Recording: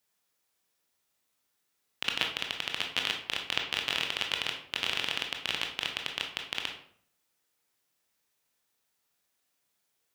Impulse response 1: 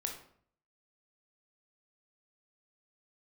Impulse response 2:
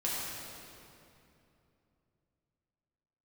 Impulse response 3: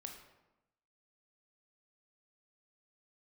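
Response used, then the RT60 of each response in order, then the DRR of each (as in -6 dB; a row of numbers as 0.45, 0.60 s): 1; 0.55, 2.8, 0.95 s; 1.5, -7.0, 2.5 dB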